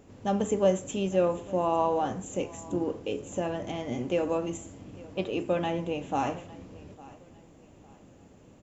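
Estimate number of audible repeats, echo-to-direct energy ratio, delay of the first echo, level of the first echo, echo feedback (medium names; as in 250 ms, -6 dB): 2, -20.5 dB, 854 ms, -21.0 dB, 34%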